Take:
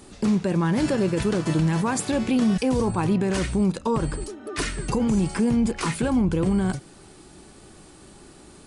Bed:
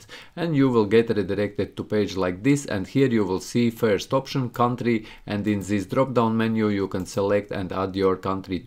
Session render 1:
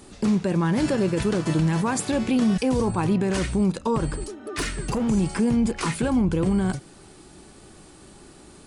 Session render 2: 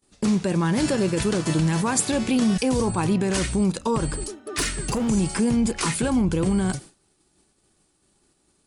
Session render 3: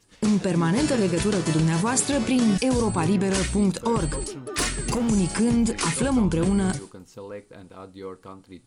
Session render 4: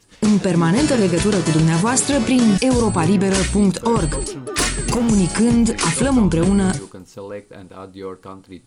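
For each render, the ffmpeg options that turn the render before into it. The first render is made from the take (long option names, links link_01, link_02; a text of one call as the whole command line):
ffmpeg -i in.wav -filter_complex "[0:a]asplit=3[link_01][link_02][link_03];[link_01]afade=type=out:start_time=4.11:duration=0.02[link_04];[link_02]volume=20.5dB,asoftclip=hard,volume=-20.5dB,afade=type=in:start_time=4.11:duration=0.02,afade=type=out:start_time=5.07:duration=0.02[link_05];[link_03]afade=type=in:start_time=5.07:duration=0.02[link_06];[link_04][link_05][link_06]amix=inputs=3:normalize=0" out.wav
ffmpeg -i in.wav -af "agate=range=-33dB:threshold=-34dB:ratio=3:detection=peak,highshelf=frequency=3900:gain=8.5" out.wav
ffmpeg -i in.wav -i bed.wav -filter_complex "[1:a]volume=-16dB[link_01];[0:a][link_01]amix=inputs=2:normalize=0" out.wav
ffmpeg -i in.wav -af "volume=6dB,alimiter=limit=-3dB:level=0:latency=1" out.wav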